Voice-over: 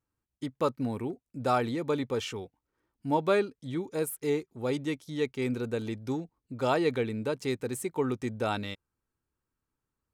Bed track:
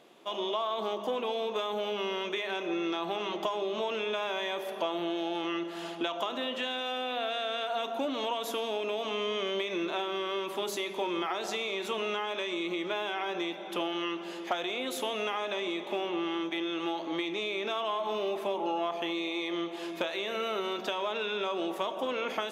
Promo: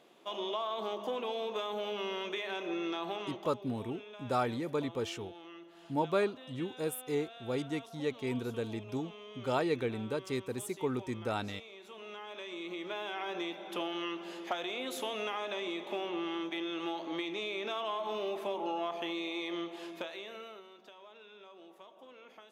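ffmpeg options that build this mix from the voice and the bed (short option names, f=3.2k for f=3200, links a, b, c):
-filter_complex "[0:a]adelay=2850,volume=-4.5dB[a];[1:a]volume=9.5dB,afade=t=out:st=3.09:d=0.44:silence=0.211349,afade=t=in:st=11.9:d=1.46:silence=0.211349,afade=t=out:st=19.53:d=1.14:silence=0.125893[b];[a][b]amix=inputs=2:normalize=0"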